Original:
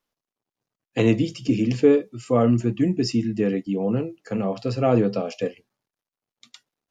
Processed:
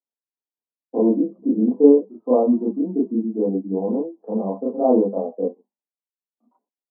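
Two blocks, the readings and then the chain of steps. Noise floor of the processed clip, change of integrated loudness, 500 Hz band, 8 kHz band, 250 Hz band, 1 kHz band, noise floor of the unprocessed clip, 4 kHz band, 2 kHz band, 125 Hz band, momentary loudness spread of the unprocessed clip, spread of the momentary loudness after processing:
under -85 dBFS, +2.0 dB, +3.5 dB, n/a, +2.5 dB, +1.5 dB, under -85 dBFS, under -40 dB, under -40 dB, under -10 dB, 9 LU, 12 LU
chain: gate with hold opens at -44 dBFS; Chebyshev band-pass 200–1000 Hz, order 5; reverse echo 32 ms -4 dB; noise-modulated level, depth 60%; gain +4.5 dB

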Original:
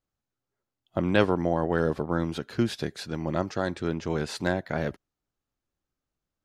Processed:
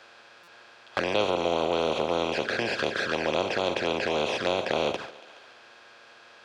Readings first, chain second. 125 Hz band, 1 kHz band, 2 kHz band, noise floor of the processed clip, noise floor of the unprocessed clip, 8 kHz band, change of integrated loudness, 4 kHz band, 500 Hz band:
-10.5 dB, +4.0 dB, +4.5 dB, -53 dBFS, under -85 dBFS, +2.0 dB, +1.0 dB, +8.5 dB, +2.5 dB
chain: per-bin compression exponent 0.2; gate with hold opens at -17 dBFS; three-band isolator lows -16 dB, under 500 Hz, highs -18 dB, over 6200 Hz; envelope flanger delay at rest 9.4 ms, full sweep at -20 dBFS; thinning echo 0.141 s, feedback 51%, high-pass 160 Hz, level -18 dB; stuck buffer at 0.43, samples 256, times 7; mismatched tape noise reduction encoder only

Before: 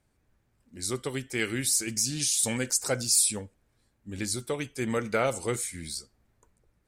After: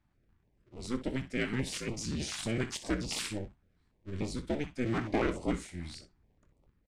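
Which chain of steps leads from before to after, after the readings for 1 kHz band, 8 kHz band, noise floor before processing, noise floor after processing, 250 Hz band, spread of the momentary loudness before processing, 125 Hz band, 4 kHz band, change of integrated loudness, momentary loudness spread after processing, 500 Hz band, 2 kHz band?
-4.5 dB, -17.0 dB, -72 dBFS, -73 dBFS, 0.0 dB, 13 LU, -1.0 dB, -8.0 dB, -7.5 dB, 14 LU, -5.0 dB, -4.5 dB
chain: cycle switcher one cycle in 2, inverted; tape spacing loss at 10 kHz 22 dB; early reflections 23 ms -12.5 dB, 62 ms -13.5 dB; stepped notch 6.9 Hz 470–1600 Hz

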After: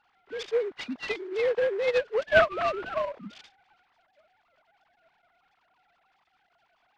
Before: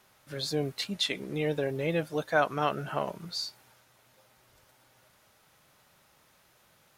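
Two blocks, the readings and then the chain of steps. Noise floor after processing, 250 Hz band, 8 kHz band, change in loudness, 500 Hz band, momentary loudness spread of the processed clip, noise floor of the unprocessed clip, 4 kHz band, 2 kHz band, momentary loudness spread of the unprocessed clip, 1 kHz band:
-71 dBFS, -6.0 dB, under -10 dB, +4.0 dB, +6.0 dB, 16 LU, -64 dBFS, -5.5 dB, +6.0 dB, 8 LU, +0.5 dB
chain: sine-wave speech; noise-modulated delay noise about 1200 Hz, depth 0.037 ms; gain +3.5 dB

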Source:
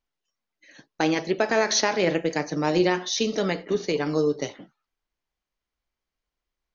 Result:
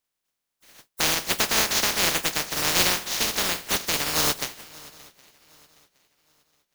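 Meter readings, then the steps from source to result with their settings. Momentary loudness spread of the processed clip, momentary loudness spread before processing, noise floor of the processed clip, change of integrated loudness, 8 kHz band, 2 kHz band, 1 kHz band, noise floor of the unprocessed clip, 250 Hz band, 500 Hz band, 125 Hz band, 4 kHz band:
6 LU, 6 LU, -83 dBFS, +2.0 dB, n/a, +3.0 dB, -0.5 dB, under -85 dBFS, -9.5 dB, -9.5 dB, -5.0 dB, +7.0 dB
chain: spectral contrast lowered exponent 0.13; swung echo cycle 0.767 s, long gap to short 3:1, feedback 30%, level -22 dB

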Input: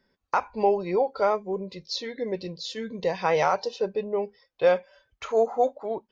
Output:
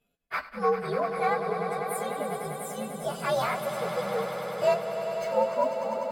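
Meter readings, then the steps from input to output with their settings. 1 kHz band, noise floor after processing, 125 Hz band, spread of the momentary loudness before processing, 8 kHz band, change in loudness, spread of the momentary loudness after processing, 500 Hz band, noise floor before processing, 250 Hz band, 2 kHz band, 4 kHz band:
-1.5 dB, -53 dBFS, +1.0 dB, 10 LU, n/a, -2.5 dB, 8 LU, -3.0 dB, -77 dBFS, -3.5 dB, 0.0 dB, -5.0 dB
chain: inharmonic rescaling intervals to 128%; swelling echo 99 ms, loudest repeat 5, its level -11 dB; gain -2 dB

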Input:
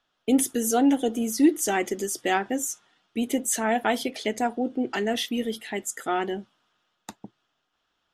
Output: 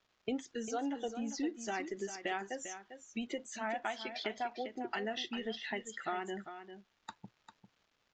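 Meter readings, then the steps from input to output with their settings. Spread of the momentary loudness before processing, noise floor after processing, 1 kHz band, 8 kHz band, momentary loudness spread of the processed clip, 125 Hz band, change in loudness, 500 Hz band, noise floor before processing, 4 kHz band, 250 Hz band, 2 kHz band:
10 LU, -78 dBFS, -11.5 dB, -18.5 dB, 13 LU, n/a, -14.0 dB, -12.5 dB, -76 dBFS, -9.5 dB, -16.0 dB, -9.5 dB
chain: spectral noise reduction 10 dB; bell 290 Hz -6 dB 2.1 oct; compressor 4:1, threshold -35 dBFS, peak gain reduction 13 dB; crackle 570/s -58 dBFS; air absorption 100 m; on a send: echo 0.398 s -10.5 dB; on the sum: downsampling 16000 Hz

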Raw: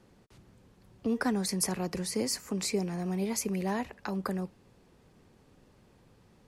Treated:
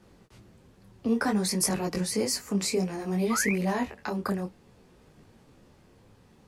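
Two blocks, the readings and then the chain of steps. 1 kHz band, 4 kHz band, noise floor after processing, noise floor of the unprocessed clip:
+4.5 dB, +4.0 dB, -58 dBFS, -62 dBFS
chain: painted sound rise, 3.3–3.53, 1100–2600 Hz -35 dBFS; detuned doubles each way 20 cents; gain +7.5 dB

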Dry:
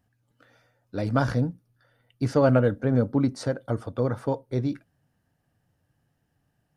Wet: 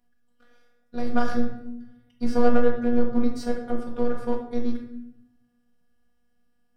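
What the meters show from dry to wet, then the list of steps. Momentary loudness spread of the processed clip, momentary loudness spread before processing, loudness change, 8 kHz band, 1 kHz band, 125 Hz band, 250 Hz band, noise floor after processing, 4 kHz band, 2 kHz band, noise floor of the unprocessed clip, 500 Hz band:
17 LU, 11 LU, -1.0 dB, n/a, +1.5 dB, -14.5 dB, +1.0 dB, -66 dBFS, -1.5 dB, 0.0 dB, -74 dBFS, -0.5 dB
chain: half-wave gain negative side -7 dB; robotiser 241 Hz; shoebox room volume 210 m³, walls mixed, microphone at 1 m

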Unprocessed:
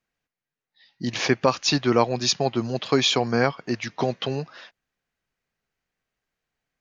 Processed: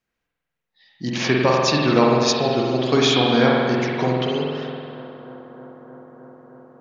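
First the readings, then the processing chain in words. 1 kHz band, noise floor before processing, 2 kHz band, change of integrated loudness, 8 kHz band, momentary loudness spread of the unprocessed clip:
+5.0 dB, under -85 dBFS, +4.5 dB, +4.5 dB, n/a, 10 LU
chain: analogue delay 0.31 s, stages 4096, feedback 82%, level -19.5 dB; spring tank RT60 1.9 s, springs 47 ms, chirp 30 ms, DRR -3 dB

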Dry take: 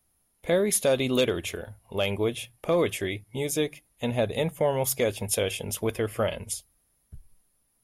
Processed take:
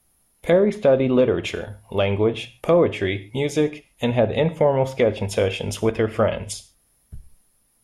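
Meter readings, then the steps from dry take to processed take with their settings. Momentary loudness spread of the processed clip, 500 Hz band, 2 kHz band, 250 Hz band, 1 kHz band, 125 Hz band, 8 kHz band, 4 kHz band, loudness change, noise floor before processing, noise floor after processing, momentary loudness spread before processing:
11 LU, +7.0 dB, +4.0 dB, +7.5 dB, +6.5 dB, +7.5 dB, -7.0 dB, +0.5 dB, +6.5 dB, -71 dBFS, -64 dBFS, 11 LU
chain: treble ducked by the level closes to 1200 Hz, closed at -20 dBFS; non-linear reverb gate 0.17 s falling, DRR 11.5 dB; gain +7 dB

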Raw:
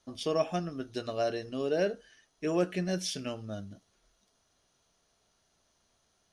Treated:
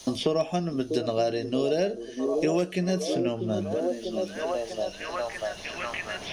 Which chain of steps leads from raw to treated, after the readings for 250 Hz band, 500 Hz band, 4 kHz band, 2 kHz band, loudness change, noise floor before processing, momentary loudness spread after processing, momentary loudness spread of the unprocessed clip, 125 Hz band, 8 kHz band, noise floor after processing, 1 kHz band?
+8.0 dB, +7.0 dB, +6.0 dB, +8.0 dB, +4.5 dB, -73 dBFS, 7 LU, 11 LU, +6.0 dB, +3.5 dB, -42 dBFS, +6.5 dB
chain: bell 1400 Hz -8 dB 0.62 oct; hard clip -19 dBFS, distortion -34 dB; delay with a stepping band-pass 0.643 s, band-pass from 330 Hz, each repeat 0.7 oct, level -7 dB; three-band squash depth 100%; gain +6 dB

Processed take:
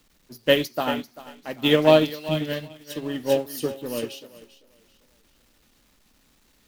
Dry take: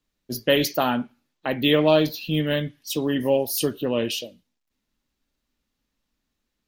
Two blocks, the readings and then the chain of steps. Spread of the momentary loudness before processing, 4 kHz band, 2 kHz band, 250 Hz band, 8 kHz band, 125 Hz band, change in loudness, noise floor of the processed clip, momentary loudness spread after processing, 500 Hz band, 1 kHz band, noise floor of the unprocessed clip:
11 LU, -1.5 dB, -0.5 dB, -2.0 dB, -6.5 dB, -3.0 dB, -0.5 dB, -62 dBFS, 19 LU, +0.5 dB, -1.0 dB, -80 dBFS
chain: zero-crossing step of -32 dBFS; thinning echo 0.392 s, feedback 43%, high-pass 200 Hz, level -6.5 dB; upward expander 2.5:1, over -32 dBFS; gain +3 dB

